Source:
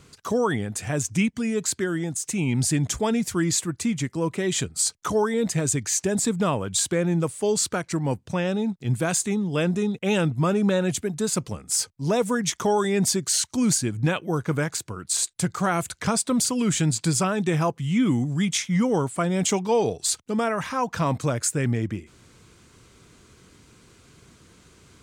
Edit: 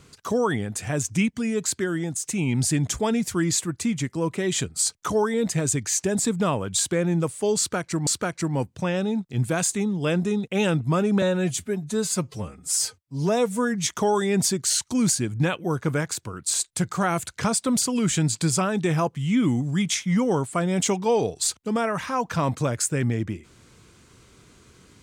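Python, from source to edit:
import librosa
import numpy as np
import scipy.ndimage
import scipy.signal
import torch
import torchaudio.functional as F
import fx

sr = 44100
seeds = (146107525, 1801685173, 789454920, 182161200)

y = fx.edit(x, sr, fx.repeat(start_s=7.58, length_s=0.49, count=2),
    fx.stretch_span(start_s=10.73, length_s=1.76, factor=1.5), tone=tone)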